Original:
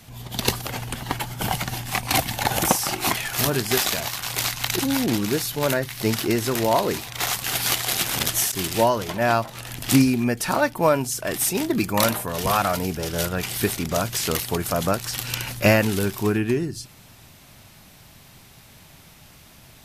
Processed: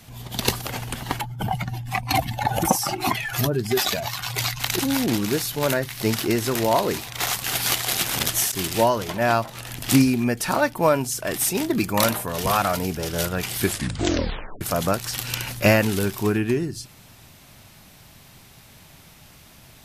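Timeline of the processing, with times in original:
1.21–4.6 spectral contrast raised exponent 1.8
13.6 tape stop 1.01 s

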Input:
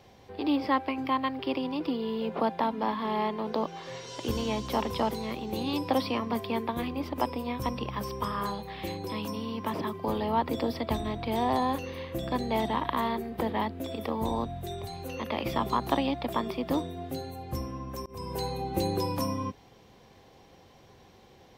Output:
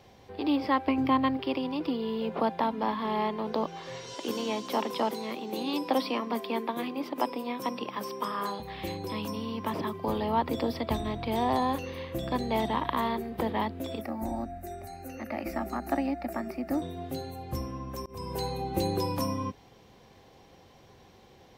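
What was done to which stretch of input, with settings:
0.87–1.37 low shelf 430 Hz +9 dB
4.14–8.6 HPF 210 Hz 24 dB/oct
14.01–16.82 fixed phaser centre 680 Hz, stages 8

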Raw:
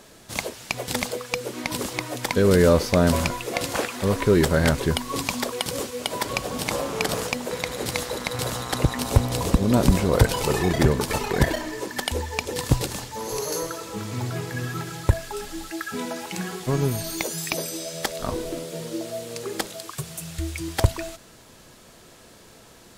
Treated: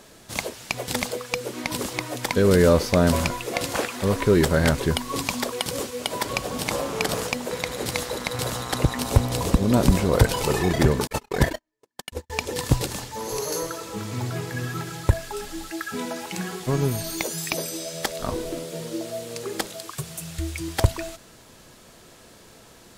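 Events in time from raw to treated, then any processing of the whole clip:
11.07–12.3 gate -25 dBFS, range -52 dB

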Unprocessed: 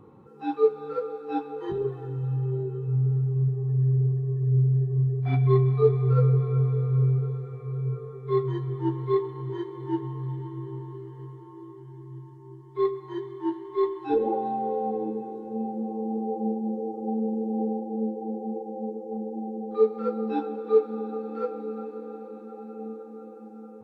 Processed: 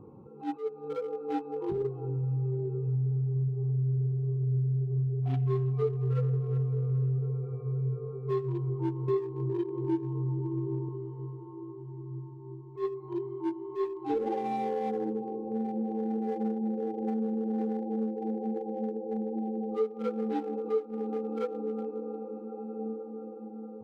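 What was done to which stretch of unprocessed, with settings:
9.08–10.89 bell 250 Hz +9 dB 1.3 oct
whole clip: Wiener smoothing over 25 samples; compressor 3:1, threshold -31 dBFS; attack slew limiter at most 210 dB/s; gain +2 dB

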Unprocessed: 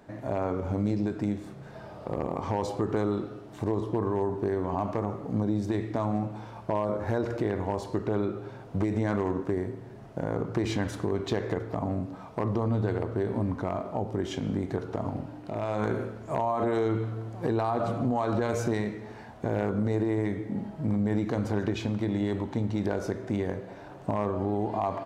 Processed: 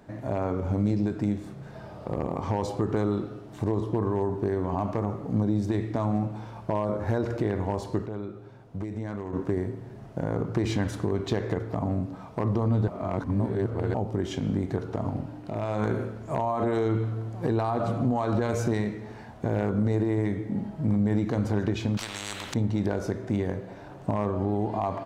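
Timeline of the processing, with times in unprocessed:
8.06–9.33 gain -8.5 dB
12.88–13.94 reverse
21.97–22.54 spectral compressor 10:1
whole clip: tone controls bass +4 dB, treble +1 dB

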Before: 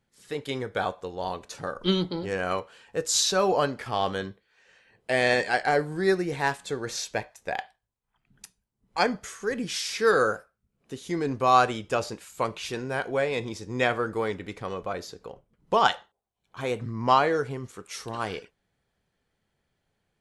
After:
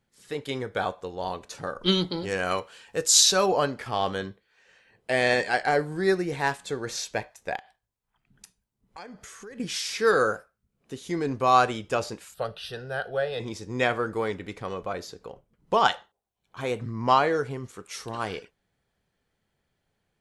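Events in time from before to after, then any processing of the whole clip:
1.86–3.46 high shelf 2500 Hz +7.5 dB
7.56–9.6 compressor 5:1, threshold -41 dBFS
12.34–13.4 fixed phaser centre 1500 Hz, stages 8

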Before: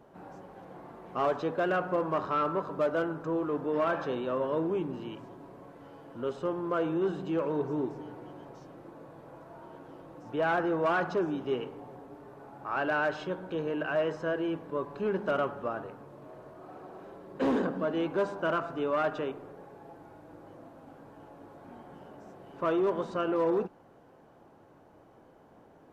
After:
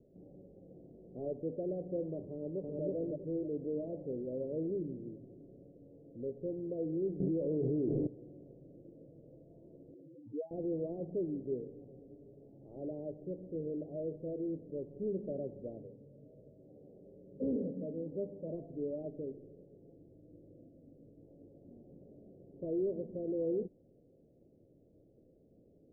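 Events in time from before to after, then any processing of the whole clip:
2.31–2.83 echo throw 0.32 s, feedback 25%, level -0.5 dB
7.2–8.07 fast leveller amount 100%
9.94–10.51 spectral contrast raised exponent 3.7
15.77–18.52 notch comb 350 Hz
19.07–21.24 resonant high shelf 1600 Hz +13 dB, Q 3
whole clip: steep low-pass 570 Hz 48 dB/oct; tilt -1.5 dB/oct; gain -8 dB

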